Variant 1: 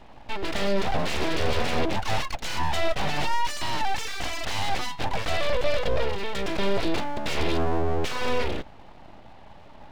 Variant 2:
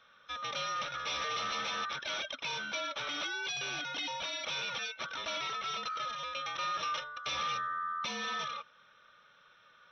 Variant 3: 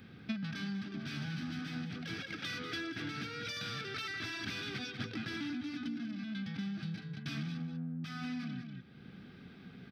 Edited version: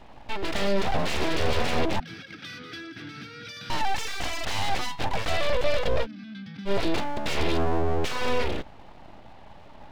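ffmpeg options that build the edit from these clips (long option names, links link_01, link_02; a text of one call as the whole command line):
ffmpeg -i take0.wav -i take1.wav -i take2.wav -filter_complex "[2:a]asplit=2[link_01][link_02];[0:a]asplit=3[link_03][link_04][link_05];[link_03]atrim=end=2.002[link_06];[link_01]atrim=start=1.998:end=3.702[link_07];[link_04]atrim=start=3.698:end=6.07[link_08];[link_02]atrim=start=6.01:end=6.71[link_09];[link_05]atrim=start=6.65[link_10];[link_06][link_07]acrossfade=duration=0.004:curve1=hsin:curve2=hsin[link_11];[link_11][link_08]acrossfade=duration=0.004:curve1=hsin:curve2=hsin[link_12];[link_12][link_09]acrossfade=duration=0.06:curve1=tri:curve2=tri[link_13];[link_13][link_10]acrossfade=duration=0.06:curve1=tri:curve2=tri" out.wav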